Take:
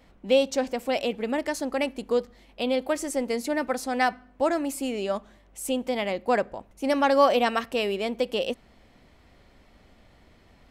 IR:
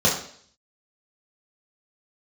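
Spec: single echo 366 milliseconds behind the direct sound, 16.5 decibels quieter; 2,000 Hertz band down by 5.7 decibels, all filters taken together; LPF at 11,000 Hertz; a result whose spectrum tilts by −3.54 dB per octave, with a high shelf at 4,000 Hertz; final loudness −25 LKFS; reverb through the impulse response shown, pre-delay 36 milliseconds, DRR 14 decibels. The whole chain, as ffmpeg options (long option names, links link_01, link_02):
-filter_complex "[0:a]lowpass=11000,equalizer=frequency=2000:width_type=o:gain=-8.5,highshelf=frequency=4000:gain=4,aecho=1:1:366:0.15,asplit=2[link_01][link_02];[1:a]atrim=start_sample=2205,adelay=36[link_03];[link_02][link_03]afir=irnorm=-1:irlink=0,volume=-31.5dB[link_04];[link_01][link_04]amix=inputs=2:normalize=0,volume=1.5dB"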